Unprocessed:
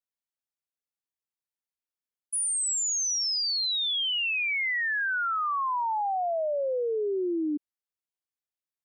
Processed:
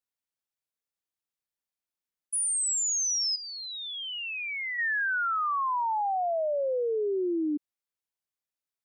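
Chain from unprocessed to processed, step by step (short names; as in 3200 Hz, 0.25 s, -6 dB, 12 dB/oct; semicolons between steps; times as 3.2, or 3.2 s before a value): 3.35–4.77 LPF 2600 Hz -> 1600 Hz 12 dB/oct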